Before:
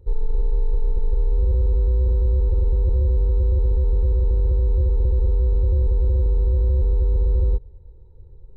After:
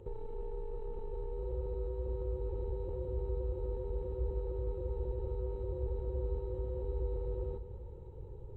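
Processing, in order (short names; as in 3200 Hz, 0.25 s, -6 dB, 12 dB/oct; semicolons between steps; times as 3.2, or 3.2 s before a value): compressor, threshold -25 dBFS, peak gain reduction 10 dB; limiter -28 dBFS, peak gain reduction 8.5 dB; thinning echo 0.194 s, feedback 67%, level -12 dB; reverb RT60 3.6 s, pre-delay 3 ms, DRR 15.5 dB; gain -1 dB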